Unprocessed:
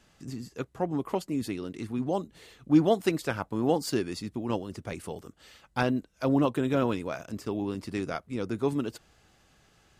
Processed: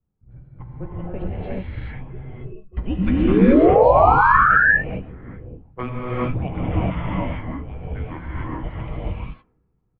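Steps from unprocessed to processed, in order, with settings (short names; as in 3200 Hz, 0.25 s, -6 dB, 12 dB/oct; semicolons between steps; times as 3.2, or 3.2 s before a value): octaver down 1 oct, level +4 dB; HPF 82 Hz; low-pass opened by the level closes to 310 Hz, open at -20.5 dBFS; 2.08–2.77 octave resonator F#, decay 0.11 s; 2.98–4.38 painted sound rise 550–2200 Hz -20 dBFS; doubler 16 ms -11 dB; non-linear reverb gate 0.46 s rising, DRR -7.5 dB; mistuned SSB -380 Hz 300–3300 Hz; gain -1.5 dB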